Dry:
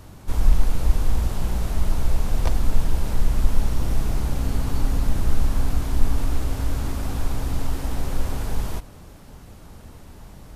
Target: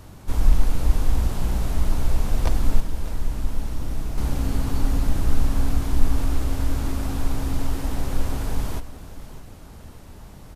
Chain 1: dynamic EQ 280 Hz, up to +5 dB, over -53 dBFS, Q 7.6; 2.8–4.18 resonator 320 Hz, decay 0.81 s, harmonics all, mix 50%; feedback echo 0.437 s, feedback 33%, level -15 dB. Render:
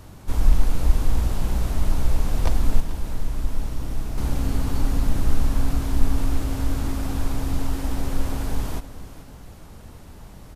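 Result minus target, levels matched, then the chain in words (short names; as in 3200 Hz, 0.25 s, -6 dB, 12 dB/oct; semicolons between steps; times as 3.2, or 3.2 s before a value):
echo 0.166 s early
dynamic EQ 280 Hz, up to +5 dB, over -53 dBFS, Q 7.6; 2.8–4.18 resonator 320 Hz, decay 0.81 s, harmonics all, mix 50%; feedback echo 0.603 s, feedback 33%, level -15 dB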